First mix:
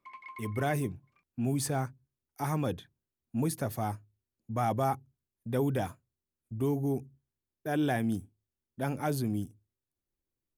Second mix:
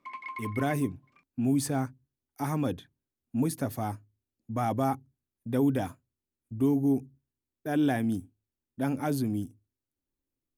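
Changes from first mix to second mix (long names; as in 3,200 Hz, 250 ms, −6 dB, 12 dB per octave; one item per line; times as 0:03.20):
background +7.0 dB
master: add parametric band 270 Hz +9.5 dB 0.26 octaves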